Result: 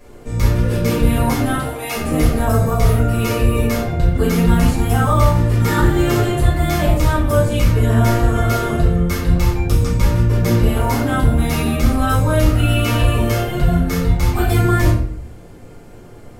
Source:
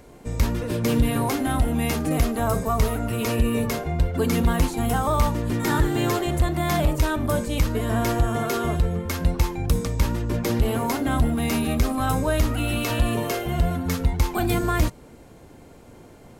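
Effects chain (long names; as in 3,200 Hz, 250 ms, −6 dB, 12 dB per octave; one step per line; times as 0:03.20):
0:01.54–0:01.96: high-pass filter 420 Hz 24 dB per octave
rectangular room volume 79 cubic metres, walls mixed, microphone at 2.1 metres
level −4 dB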